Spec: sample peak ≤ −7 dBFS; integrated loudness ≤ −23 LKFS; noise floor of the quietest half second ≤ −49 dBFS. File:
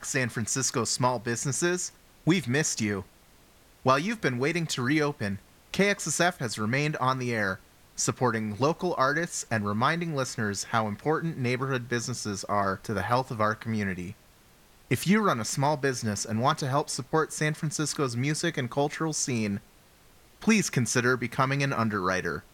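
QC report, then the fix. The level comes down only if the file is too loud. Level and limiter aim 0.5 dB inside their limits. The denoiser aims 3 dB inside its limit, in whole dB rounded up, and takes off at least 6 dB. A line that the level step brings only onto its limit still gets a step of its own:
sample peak −8.5 dBFS: in spec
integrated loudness −27.5 LKFS: in spec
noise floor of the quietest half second −57 dBFS: in spec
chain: no processing needed

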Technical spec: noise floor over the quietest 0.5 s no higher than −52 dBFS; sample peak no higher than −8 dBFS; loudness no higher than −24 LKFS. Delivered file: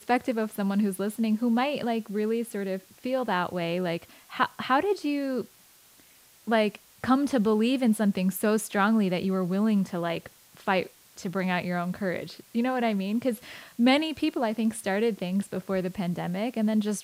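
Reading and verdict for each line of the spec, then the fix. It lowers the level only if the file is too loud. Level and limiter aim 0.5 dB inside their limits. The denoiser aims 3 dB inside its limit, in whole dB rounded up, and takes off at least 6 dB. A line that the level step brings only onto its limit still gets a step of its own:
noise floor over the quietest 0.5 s −57 dBFS: in spec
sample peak −10.0 dBFS: in spec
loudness −27.5 LKFS: in spec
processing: no processing needed

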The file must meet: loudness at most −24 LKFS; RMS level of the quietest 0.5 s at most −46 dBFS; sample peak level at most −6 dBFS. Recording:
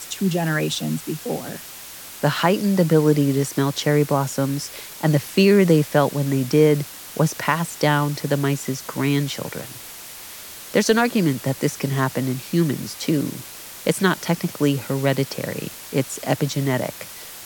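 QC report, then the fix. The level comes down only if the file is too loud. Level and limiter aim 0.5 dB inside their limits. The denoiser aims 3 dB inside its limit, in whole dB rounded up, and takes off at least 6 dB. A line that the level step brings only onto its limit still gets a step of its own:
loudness −21.0 LKFS: out of spec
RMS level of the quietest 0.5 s −38 dBFS: out of spec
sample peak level −4.5 dBFS: out of spec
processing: broadband denoise 8 dB, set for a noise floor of −38 dBFS
level −3.5 dB

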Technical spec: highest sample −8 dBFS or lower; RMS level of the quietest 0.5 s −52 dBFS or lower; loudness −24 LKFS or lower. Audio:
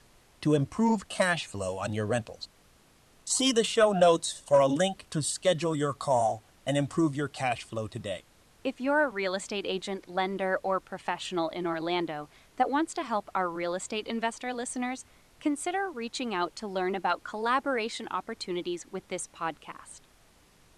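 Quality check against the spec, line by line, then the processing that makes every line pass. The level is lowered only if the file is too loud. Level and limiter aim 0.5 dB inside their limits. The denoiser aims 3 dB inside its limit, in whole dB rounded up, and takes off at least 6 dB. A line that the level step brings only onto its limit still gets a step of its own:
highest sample −11.5 dBFS: in spec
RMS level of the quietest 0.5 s −61 dBFS: in spec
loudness −29.5 LKFS: in spec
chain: no processing needed

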